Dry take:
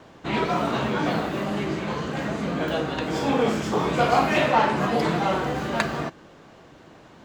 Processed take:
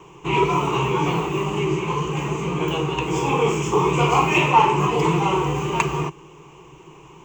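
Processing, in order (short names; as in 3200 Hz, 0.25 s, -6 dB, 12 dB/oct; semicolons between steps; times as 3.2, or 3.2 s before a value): ripple EQ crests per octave 0.72, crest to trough 18 dB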